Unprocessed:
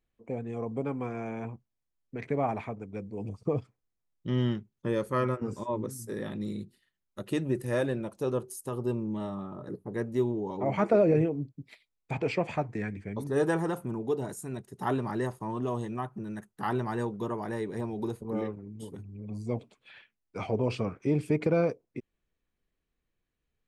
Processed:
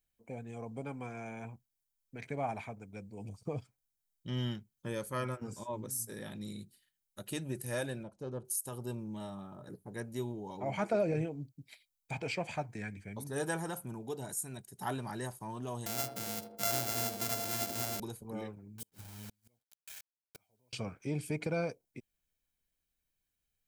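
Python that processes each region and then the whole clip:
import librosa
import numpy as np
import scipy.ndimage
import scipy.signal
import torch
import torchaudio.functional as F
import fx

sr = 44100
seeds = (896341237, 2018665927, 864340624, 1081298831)

y = fx.chain(x, sr, fx.self_delay(depth_ms=0.078),
    fx.lowpass(hz=3900.0, slope=12),
    fx.peak_eq(hz=2800.0, db=-11.5, octaves=2.7), at=(8.03, 8.45))
y = fx.chain(y, sr, fx.sample_sort(block=64),
    fx.echo_banded(ms=80, feedback_pct=68, hz=430.0, wet_db=-5),
    fx.band_squash(depth_pct=40), at=(15.86, 18.0))
y = fx.chain(y, sr, fx.quant_dither(seeds[0], bits=8, dither='none'),
    fx.gate_flip(shuts_db=-31.0, range_db=-39), at=(18.78, 20.73))
y = scipy.signal.lfilter([1.0, -0.8], [1.0], y)
y = y + 0.33 * np.pad(y, (int(1.3 * sr / 1000.0), 0))[:len(y)]
y = F.gain(torch.from_numpy(y), 5.5).numpy()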